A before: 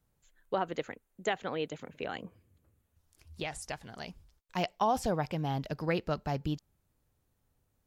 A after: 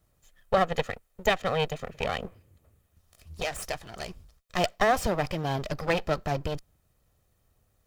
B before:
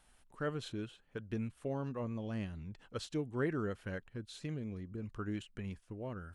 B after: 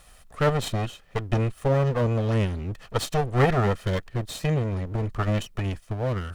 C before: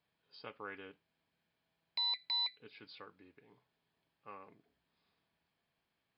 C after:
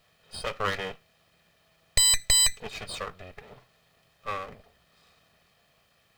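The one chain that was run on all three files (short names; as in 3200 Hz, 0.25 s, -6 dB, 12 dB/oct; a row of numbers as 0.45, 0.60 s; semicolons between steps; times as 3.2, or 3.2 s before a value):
minimum comb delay 1.6 ms; normalise peaks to -9 dBFS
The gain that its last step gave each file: +8.0, +16.5, +20.0 dB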